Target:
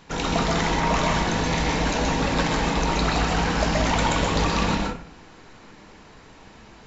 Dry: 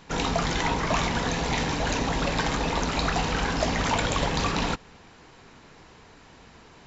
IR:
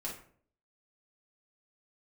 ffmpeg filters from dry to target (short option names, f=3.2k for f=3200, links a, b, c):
-filter_complex "[0:a]asplit=2[a][b];[1:a]atrim=start_sample=2205,adelay=125[c];[b][c]afir=irnorm=-1:irlink=0,volume=-0.5dB[d];[a][d]amix=inputs=2:normalize=0"